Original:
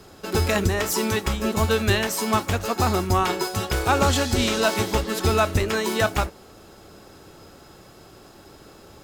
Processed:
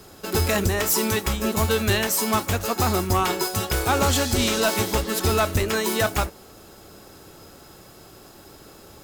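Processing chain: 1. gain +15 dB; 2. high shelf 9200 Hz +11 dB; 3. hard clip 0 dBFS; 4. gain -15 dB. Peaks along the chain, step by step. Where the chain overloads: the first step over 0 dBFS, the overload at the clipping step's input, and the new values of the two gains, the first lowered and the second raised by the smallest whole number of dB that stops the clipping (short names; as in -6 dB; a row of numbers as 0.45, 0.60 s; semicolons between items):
+6.0, +7.5, 0.0, -15.0 dBFS; step 1, 7.5 dB; step 1 +7 dB, step 4 -7 dB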